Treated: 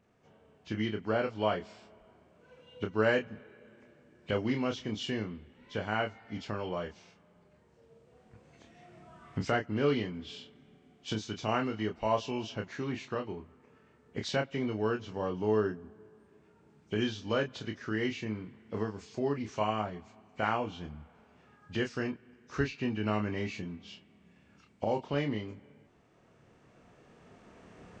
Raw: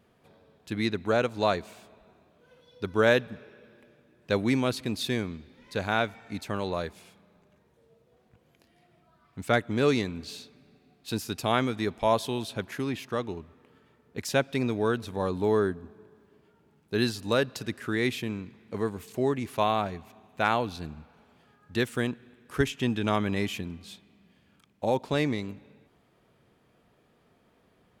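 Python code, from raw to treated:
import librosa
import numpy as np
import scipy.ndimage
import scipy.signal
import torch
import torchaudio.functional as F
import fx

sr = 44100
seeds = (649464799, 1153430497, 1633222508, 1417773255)

y = fx.freq_compress(x, sr, knee_hz=1900.0, ratio=1.5)
y = fx.recorder_agc(y, sr, target_db=-18.5, rise_db_per_s=6.3, max_gain_db=30)
y = fx.doubler(y, sr, ms=28.0, db=-6)
y = y * 10.0 ** (-6.0 / 20.0)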